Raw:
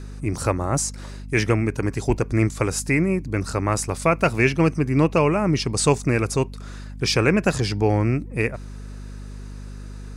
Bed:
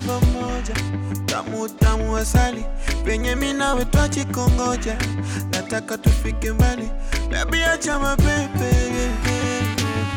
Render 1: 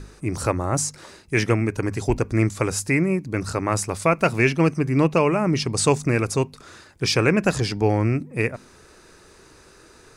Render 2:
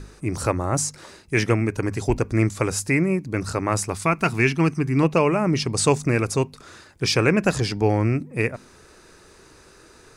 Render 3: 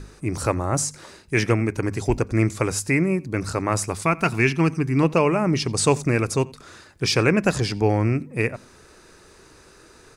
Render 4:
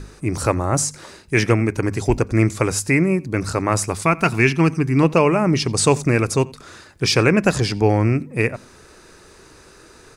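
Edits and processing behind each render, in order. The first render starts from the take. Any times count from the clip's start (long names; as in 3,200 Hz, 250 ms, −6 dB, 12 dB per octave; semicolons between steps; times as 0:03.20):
hum removal 50 Hz, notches 5
0:03.92–0:05.03: parametric band 550 Hz −13 dB 0.37 octaves
slap from a distant wall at 15 metres, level −23 dB
level +3.5 dB; brickwall limiter −3 dBFS, peak gain reduction 1.5 dB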